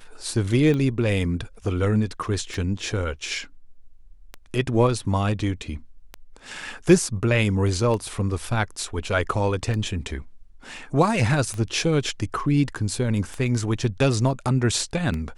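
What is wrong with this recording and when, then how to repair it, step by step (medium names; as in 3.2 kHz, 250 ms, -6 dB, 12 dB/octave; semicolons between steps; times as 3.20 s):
tick 33 1/3 rpm -17 dBFS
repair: de-click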